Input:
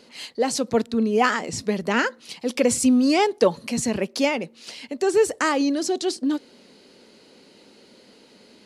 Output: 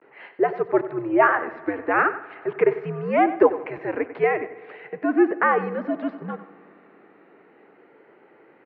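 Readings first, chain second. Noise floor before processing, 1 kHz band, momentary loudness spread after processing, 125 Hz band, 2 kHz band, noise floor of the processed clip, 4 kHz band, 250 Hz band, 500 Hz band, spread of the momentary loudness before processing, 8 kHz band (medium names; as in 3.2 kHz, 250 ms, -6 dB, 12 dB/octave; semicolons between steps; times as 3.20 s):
-53 dBFS, +3.0 dB, 13 LU, -1.0 dB, +2.0 dB, -55 dBFS, under -20 dB, -3.5 dB, +0.5 dB, 11 LU, under -40 dB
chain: vibrato 0.4 Hz 64 cents; on a send: delay 94 ms -14 dB; on the sum: mistuned SSB -100 Hz 460–2100 Hz; echo from a far wall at 27 m, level -22 dB; spring tank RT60 3.4 s, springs 58 ms, chirp 25 ms, DRR 19.5 dB; trim +4 dB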